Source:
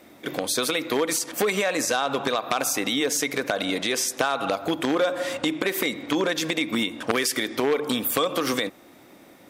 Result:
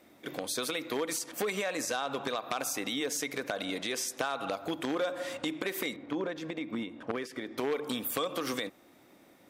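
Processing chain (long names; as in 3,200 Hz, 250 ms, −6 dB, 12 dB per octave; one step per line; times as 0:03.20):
0:05.96–0:07.58: low-pass filter 1,100 Hz 6 dB per octave
level −9 dB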